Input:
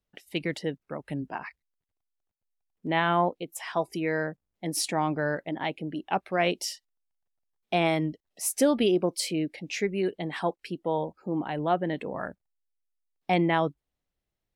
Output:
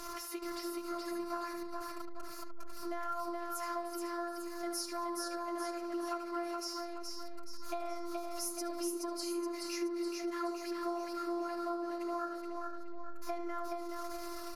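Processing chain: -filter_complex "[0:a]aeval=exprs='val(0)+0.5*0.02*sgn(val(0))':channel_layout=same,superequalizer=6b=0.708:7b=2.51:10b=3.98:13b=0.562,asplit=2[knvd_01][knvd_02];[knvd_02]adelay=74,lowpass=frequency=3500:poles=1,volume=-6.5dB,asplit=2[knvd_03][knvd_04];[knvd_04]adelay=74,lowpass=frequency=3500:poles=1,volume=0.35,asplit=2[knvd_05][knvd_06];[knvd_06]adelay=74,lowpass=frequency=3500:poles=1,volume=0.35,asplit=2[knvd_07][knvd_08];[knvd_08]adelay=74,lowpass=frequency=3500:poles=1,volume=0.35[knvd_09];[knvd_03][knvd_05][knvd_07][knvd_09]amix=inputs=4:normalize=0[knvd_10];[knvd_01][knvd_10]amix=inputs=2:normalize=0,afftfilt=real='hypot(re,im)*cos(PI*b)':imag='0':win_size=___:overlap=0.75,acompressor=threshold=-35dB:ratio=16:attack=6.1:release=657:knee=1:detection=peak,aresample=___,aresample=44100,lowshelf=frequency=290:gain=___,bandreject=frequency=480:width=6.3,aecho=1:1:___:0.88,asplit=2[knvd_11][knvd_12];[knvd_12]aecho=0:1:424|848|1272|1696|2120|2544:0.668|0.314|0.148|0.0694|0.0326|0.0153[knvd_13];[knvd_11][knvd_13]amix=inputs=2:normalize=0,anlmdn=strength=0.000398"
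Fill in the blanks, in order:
512, 32000, -11, 6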